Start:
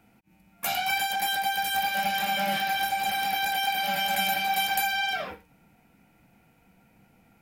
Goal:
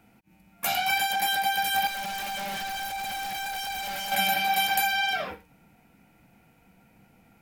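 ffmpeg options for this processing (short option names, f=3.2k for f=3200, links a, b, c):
-filter_complex "[0:a]asettb=1/sr,asplit=3[a][b][c];[a]atrim=end=1.874[d];[b]atrim=start=1.87:end=4.12,asetpts=PTS-STARTPTS,afade=t=in:d=0.004:c=qsin,afade=t=out:st=2.246:d=0.004:c=qsin,asoftclip=type=hard:threshold=-33dB[e];[c]atrim=start=4.116[f];[d][e]acrossfade=d=0.004:c1=hsin:c2=qsin[g];[g][f]acrossfade=d=0.004:c1=qsin:c2=hsin,volume=1.5dB"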